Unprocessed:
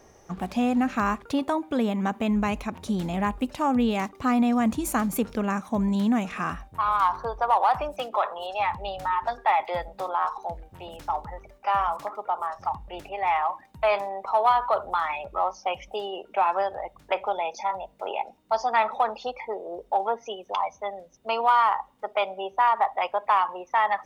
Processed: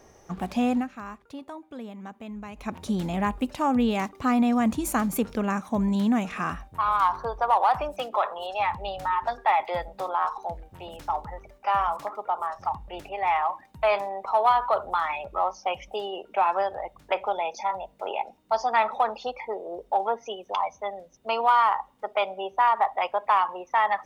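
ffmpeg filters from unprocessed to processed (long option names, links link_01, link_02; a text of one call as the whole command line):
ffmpeg -i in.wav -filter_complex "[0:a]asplit=3[link_01][link_02][link_03];[link_01]atrim=end=0.88,asetpts=PTS-STARTPTS,afade=type=out:start_time=0.74:duration=0.14:silence=0.199526[link_04];[link_02]atrim=start=0.88:end=2.56,asetpts=PTS-STARTPTS,volume=-14dB[link_05];[link_03]atrim=start=2.56,asetpts=PTS-STARTPTS,afade=type=in:duration=0.14:silence=0.199526[link_06];[link_04][link_05][link_06]concat=n=3:v=0:a=1" out.wav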